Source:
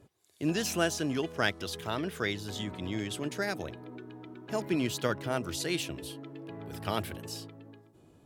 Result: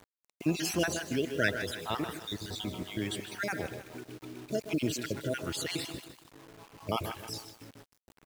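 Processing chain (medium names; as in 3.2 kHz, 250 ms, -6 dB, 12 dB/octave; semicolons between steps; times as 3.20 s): random holes in the spectrogram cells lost 46%; 6.04–6.89 s: four-pole ladder low-pass 1.1 kHz, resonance 85%; speakerphone echo 130 ms, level -10 dB; bit crusher 9-bit; bit-crushed delay 154 ms, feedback 55%, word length 8-bit, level -11 dB; trim +1.5 dB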